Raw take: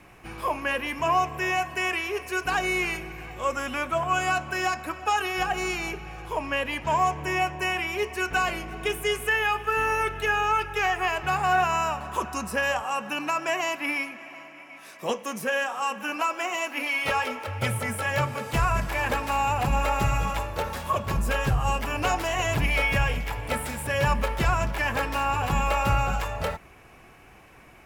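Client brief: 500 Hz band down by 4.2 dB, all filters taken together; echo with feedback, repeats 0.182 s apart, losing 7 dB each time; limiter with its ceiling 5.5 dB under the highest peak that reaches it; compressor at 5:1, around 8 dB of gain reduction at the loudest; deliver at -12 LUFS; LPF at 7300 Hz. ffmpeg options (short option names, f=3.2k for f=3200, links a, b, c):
-af "lowpass=7.3k,equalizer=f=500:t=o:g=-5.5,acompressor=threshold=-28dB:ratio=5,alimiter=limit=-23.5dB:level=0:latency=1,aecho=1:1:182|364|546|728|910:0.447|0.201|0.0905|0.0407|0.0183,volume=20dB"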